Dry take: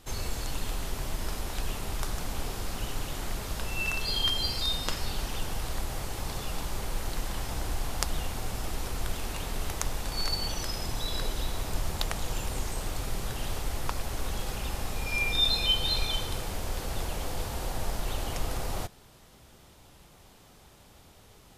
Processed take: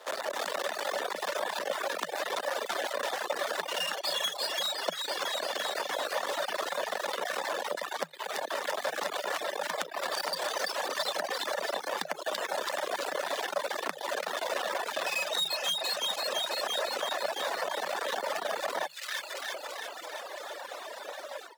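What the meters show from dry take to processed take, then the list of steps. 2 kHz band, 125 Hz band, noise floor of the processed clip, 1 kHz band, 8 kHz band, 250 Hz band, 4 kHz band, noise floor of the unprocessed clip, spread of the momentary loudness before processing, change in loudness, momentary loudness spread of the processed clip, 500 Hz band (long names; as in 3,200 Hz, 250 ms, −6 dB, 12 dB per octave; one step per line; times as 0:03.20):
+4.5 dB, below −25 dB, −44 dBFS, +6.0 dB, −1.5 dB, −8.0 dB, −1.0 dB, −55 dBFS, 9 LU, 0.0 dB, 7 LU, +8.0 dB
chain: each half-wave held at its own peak
mid-hump overdrive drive 9 dB, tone 2,800 Hz, clips at −4 dBFS
delay with a high-pass on its return 336 ms, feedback 64%, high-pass 1,700 Hz, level −6 dB
automatic gain control gain up to 11.5 dB
reverb reduction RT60 1.1 s
Chebyshev high-pass filter 350 Hz, order 2
parametric band 2,300 Hz −3.5 dB 0.77 octaves
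downward compressor 8 to 1, threshold −31 dBFS, peak gain reduction 19.5 dB
asymmetric clip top −29.5 dBFS
reverb reduction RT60 0.53 s
hollow resonant body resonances 430/1,600/3,400 Hz, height 8 dB, ringing for 25 ms
frequency shifter +150 Hz
level +2 dB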